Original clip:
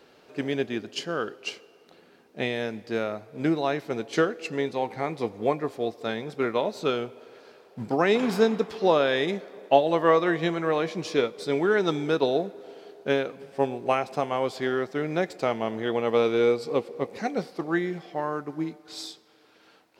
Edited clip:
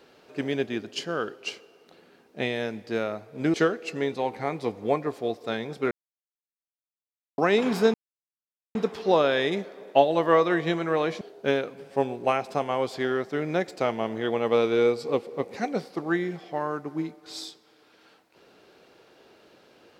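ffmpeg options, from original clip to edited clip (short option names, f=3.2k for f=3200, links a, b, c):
-filter_complex "[0:a]asplit=6[a][b][c][d][e][f];[a]atrim=end=3.542[g];[b]atrim=start=4.108:end=6.48,asetpts=PTS-STARTPTS,afade=t=out:st=2.368:d=0.004:c=hsin[h];[c]atrim=start=6.48:end=7.95,asetpts=PTS-STARTPTS,volume=0[i];[d]atrim=start=7.95:end=8.51,asetpts=PTS-STARTPTS,afade=t=in:d=0.004:c=hsin,afade=t=out:st=0.556:d=0.004:c=hsin,apad=pad_dur=0.81[j];[e]atrim=start=8.51:end=10.972,asetpts=PTS-STARTPTS,afade=t=in:d=0.004:c=hsin[k];[f]atrim=start=12.828[l];[h][i][j][k]concat=n=4:v=0:a=1[m];[g][m]acrossfade=d=0.004:c1=hsin:c2=hsin[n];[n][l]acrossfade=d=0.004:c1=hsin:c2=hsin"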